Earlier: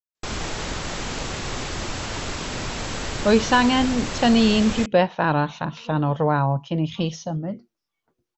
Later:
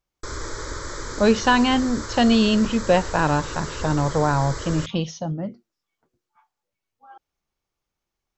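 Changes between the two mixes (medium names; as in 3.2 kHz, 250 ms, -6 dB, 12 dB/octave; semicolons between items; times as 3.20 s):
speech: entry -2.05 s; background: add static phaser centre 740 Hz, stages 6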